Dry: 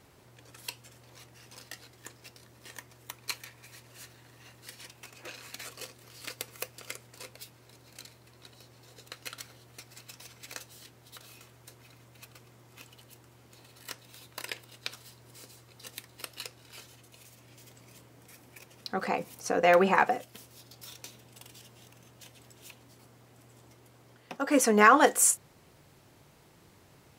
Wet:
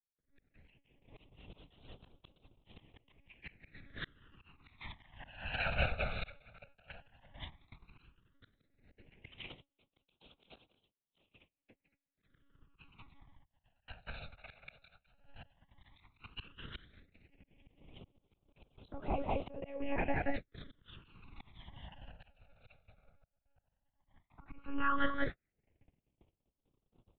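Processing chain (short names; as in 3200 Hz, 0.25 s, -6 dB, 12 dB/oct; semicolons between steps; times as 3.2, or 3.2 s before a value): speakerphone echo 0.18 s, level -9 dB; monotone LPC vocoder at 8 kHz 280 Hz; air absorption 100 m; compressor 5:1, threshold -46 dBFS, peak gain reduction 28 dB; 9.4–12.24 low shelf 150 Hz -8 dB; gate -54 dBFS, range -45 dB; AGC gain up to 10 dB; auto swell 0.685 s; phaser stages 12, 0.12 Hz, lowest notch 320–1800 Hz; three-band expander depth 40%; gain +8.5 dB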